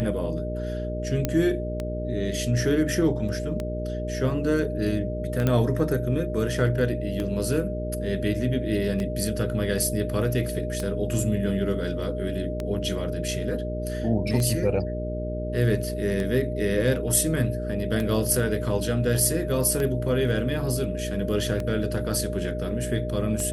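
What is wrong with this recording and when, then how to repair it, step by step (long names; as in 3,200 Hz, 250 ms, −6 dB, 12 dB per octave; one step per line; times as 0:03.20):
mains hum 60 Hz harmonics 8 −31 dBFS
scratch tick 33 1/3 rpm −16 dBFS
whistle 610 Hz −32 dBFS
0:01.25: click −9 dBFS
0:05.47: click −11 dBFS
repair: click removal
notch filter 610 Hz, Q 30
hum removal 60 Hz, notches 8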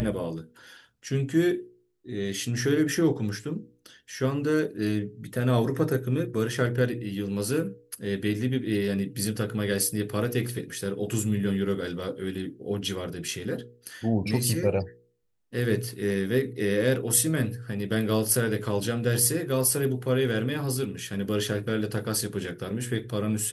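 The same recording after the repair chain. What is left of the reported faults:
none of them is left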